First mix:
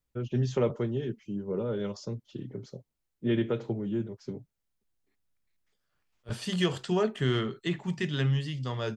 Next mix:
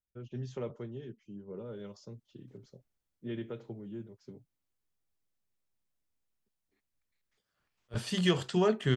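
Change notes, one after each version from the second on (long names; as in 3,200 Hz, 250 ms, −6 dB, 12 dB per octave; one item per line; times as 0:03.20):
first voice −11.5 dB
second voice: entry +1.65 s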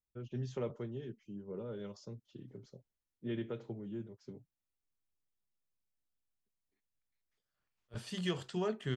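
second voice −8.5 dB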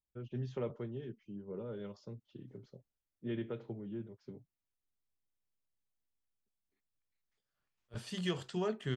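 first voice: add low-pass filter 3,900 Hz 12 dB per octave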